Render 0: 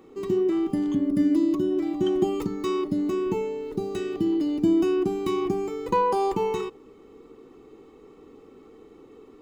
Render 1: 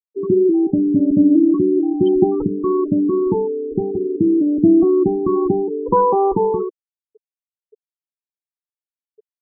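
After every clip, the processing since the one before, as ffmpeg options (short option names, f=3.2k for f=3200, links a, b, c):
-af "lowpass=f=1.4k:p=1,afftfilt=real='re*gte(hypot(re,im),0.0501)':imag='im*gte(hypot(re,im),0.0501)':win_size=1024:overlap=0.75,volume=9dB"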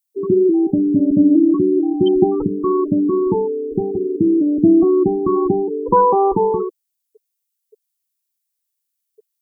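-af "crystalizer=i=6:c=0"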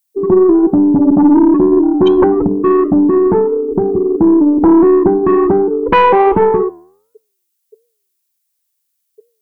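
-af "aeval=exprs='0.891*sin(PI/2*2.24*val(0)/0.891)':c=same,flanger=delay=9.3:depth=3.9:regen=-88:speed=1.4:shape=triangular,aeval=exprs='0.75*(cos(1*acos(clip(val(0)/0.75,-1,1)))-cos(1*PI/2))+0.0473*(cos(2*acos(clip(val(0)/0.75,-1,1)))-cos(2*PI/2))+0.00668*(cos(5*acos(clip(val(0)/0.75,-1,1)))-cos(5*PI/2))':c=same,volume=1dB"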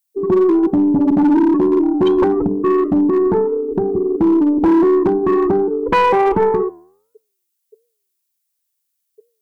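-af "asoftclip=type=hard:threshold=-5.5dB,volume=-4dB"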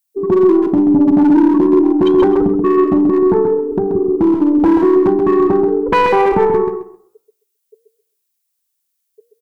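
-af "aecho=1:1:132|264|396:0.473|0.0852|0.0153,volume=1dB"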